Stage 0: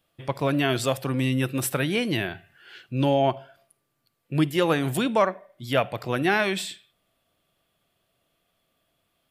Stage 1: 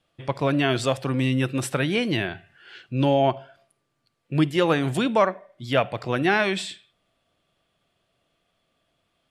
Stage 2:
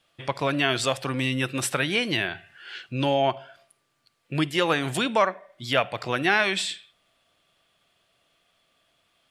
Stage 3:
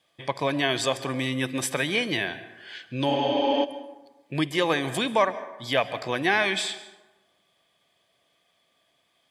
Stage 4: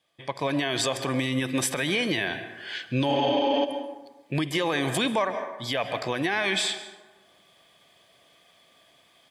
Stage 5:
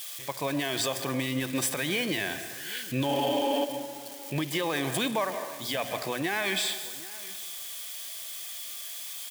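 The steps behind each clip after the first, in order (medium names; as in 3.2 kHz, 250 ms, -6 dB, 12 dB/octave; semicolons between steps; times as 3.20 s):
Bessel low-pass 7.3 kHz, order 4; trim +1.5 dB
tilt shelf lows -5 dB, about 700 Hz; in parallel at -1 dB: compression, threshold -30 dBFS, peak gain reduction 15.5 dB; on the sum: trim -3.5 dB
spectral replace 3.12–3.62 s, 210–6400 Hz before; comb of notches 1.4 kHz; plate-style reverb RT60 1.1 s, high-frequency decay 0.5×, pre-delay 120 ms, DRR 14.5 dB
level rider gain up to 14 dB; peak limiter -11 dBFS, peak gain reduction 9.5 dB; trim -4.5 dB
zero-crossing glitches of -27 dBFS; hum notches 60/120 Hz; delay 773 ms -20 dB; trim -3.5 dB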